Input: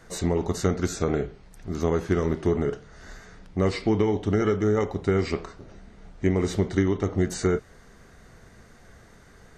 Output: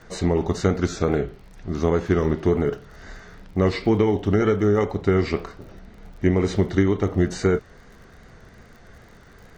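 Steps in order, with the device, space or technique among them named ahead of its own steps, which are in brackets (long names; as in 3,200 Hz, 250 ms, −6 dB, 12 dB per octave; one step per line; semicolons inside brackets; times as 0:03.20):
lo-fi chain (low-pass filter 5,300 Hz 12 dB per octave; tape wow and flutter; surface crackle 44 per second −45 dBFS)
level +3.5 dB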